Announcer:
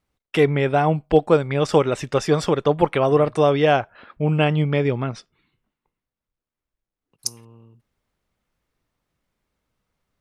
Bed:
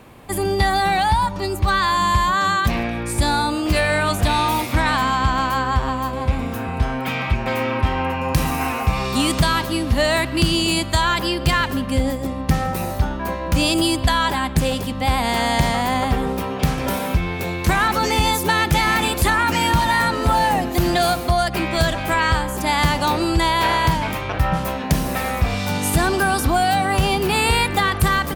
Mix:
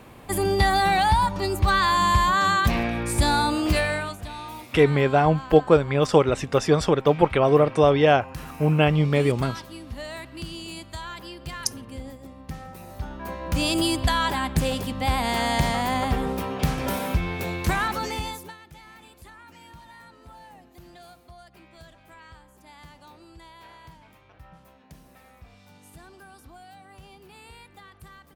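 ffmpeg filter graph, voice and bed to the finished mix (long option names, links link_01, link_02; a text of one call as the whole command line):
ffmpeg -i stem1.wav -i stem2.wav -filter_complex "[0:a]adelay=4400,volume=-0.5dB[link_01];[1:a]volume=11.5dB,afade=type=out:start_time=3.65:duration=0.52:silence=0.158489,afade=type=in:start_time=12.85:duration=0.94:silence=0.211349,afade=type=out:start_time=17.56:duration=1.01:silence=0.0530884[link_02];[link_01][link_02]amix=inputs=2:normalize=0" out.wav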